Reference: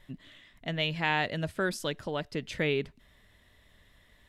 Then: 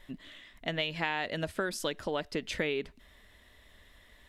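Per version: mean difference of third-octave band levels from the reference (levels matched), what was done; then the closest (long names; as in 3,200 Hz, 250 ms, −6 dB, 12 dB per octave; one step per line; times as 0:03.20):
4.0 dB: parametric band 130 Hz −11 dB 0.83 octaves
downward compressor 10 to 1, threshold −31 dBFS, peak gain reduction 9 dB
level +3.5 dB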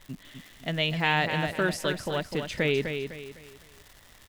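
7.0 dB: surface crackle 310 per second −42 dBFS
repeating echo 253 ms, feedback 35%, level −7 dB
level +3 dB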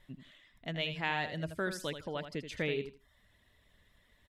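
2.5 dB: reverb reduction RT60 0.53 s
on a send: repeating echo 80 ms, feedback 18%, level −9.5 dB
on the sum: level −5 dB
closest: third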